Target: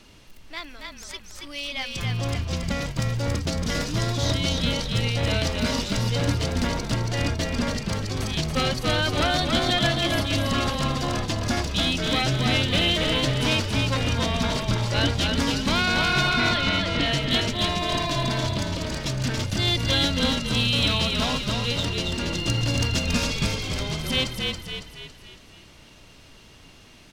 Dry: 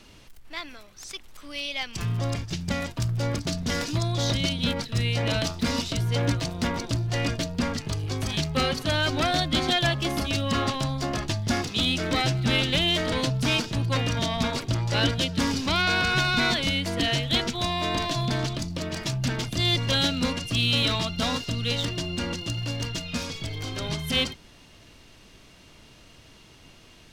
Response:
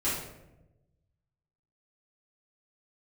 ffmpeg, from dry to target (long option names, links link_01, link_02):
-filter_complex "[0:a]asettb=1/sr,asplit=3[link_01][link_02][link_03];[link_01]atrim=end=16.294[link_04];[link_02]atrim=start=16.29:end=17.06,asetpts=PTS-STARTPTS,afade=type=in:duration=0.004:curve=qsin,afade=type=out:start_time=0.766:duration=0.004:curve=qsin,lowpass=5000[link_05];[link_03]atrim=start=17.056[link_06];[link_04][link_05]acrossfade=duration=0.004:curve1=hsin:curve2=qsin[link_07];[link_07][link_06]acrossfade=duration=0.004:curve1=qsin:curve2=hsin,asettb=1/sr,asplit=3[link_08][link_09][link_10];[link_08]atrim=end=22.354[link_11];[link_09]atrim=start=22.35:end=23.56,asetpts=PTS-STARTPTS,afade=type=in:duration=0.004:curve=qsin,afade=type=out:start_time=1.206:duration=0.004:curve=qsin,acontrast=36[link_12];[link_10]atrim=start=23.556[link_13];[link_11][link_12]acrossfade=duration=0.004:curve1=hsin:curve2=qsin[link_14];[link_14][link_13]acrossfade=duration=0.004:curve1=qsin:curve2=hsin,asplit=2[link_15][link_16];[link_16]asplit=6[link_17][link_18][link_19][link_20][link_21][link_22];[link_17]adelay=278,afreqshift=-35,volume=-3.5dB[link_23];[link_18]adelay=556,afreqshift=-70,volume=-10.1dB[link_24];[link_19]adelay=834,afreqshift=-105,volume=-16.6dB[link_25];[link_20]adelay=1112,afreqshift=-140,volume=-23.2dB[link_26];[link_21]adelay=1390,afreqshift=-175,volume=-29.7dB[link_27];[link_22]adelay=1668,afreqshift=-210,volume=-36.3dB[link_28];[link_23][link_24][link_25][link_26][link_27][link_28]amix=inputs=6:normalize=0[link_29];[link_15][link_29]amix=inputs=2:normalize=0"